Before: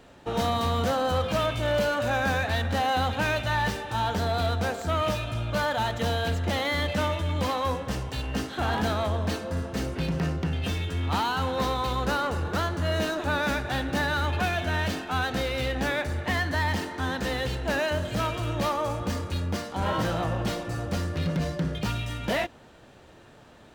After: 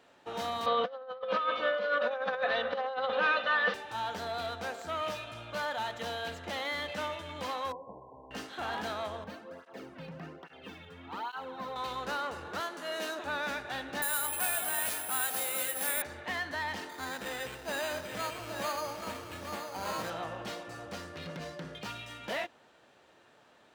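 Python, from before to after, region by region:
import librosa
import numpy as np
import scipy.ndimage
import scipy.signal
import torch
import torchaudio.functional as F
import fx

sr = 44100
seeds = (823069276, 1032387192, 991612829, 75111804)

y = fx.chain(x, sr, fx.cabinet(low_hz=190.0, low_slope=12, high_hz=3800.0, hz=(270.0, 530.0, 830.0, 1200.0, 2500.0), db=(-9, 10, -4, 7, -4)),
    fx.comb(ms=4.0, depth=0.93),
    fx.over_compress(threshold_db=-22.0, ratio=-0.5), at=(0.66, 3.74))
y = fx.chain(y, sr, fx.brickwall_lowpass(high_hz=1100.0),
    fx.low_shelf(hz=280.0, db=-9.0),
    fx.notch(hz=830.0, q=13.0), at=(7.72, 8.31))
y = fx.chain(y, sr, fx.highpass(hz=63.0, slope=12),
    fx.peak_eq(hz=7900.0, db=-11.5, octaves=2.5),
    fx.flanger_cancel(hz=1.2, depth_ms=3.2), at=(9.24, 11.76))
y = fx.chain(y, sr, fx.highpass(hz=210.0, slope=24),
    fx.peak_eq(hz=12000.0, db=7.0, octaves=1.4), at=(12.6, 13.19))
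y = fx.chain(y, sr, fx.low_shelf(hz=400.0, db=-9.0),
    fx.echo_alternate(ms=207, hz=880.0, feedback_pct=56, wet_db=-3.5),
    fx.resample_bad(factor=4, down='none', up='zero_stuff'), at=(14.02, 16.02))
y = fx.chain(y, sr, fx.resample_bad(factor=8, down='none', up='hold'),
    fx.echo_single(ms=830, db=-7.0), at=(16.89, 20.1))
y = fx.highpass(y, sr, hz=610.0, slope=6)
y = fx.high_shelf(y, sr, hz=5900.0, db=-5.0)
y = y * 10.0 ** (-5.5 / 20.0)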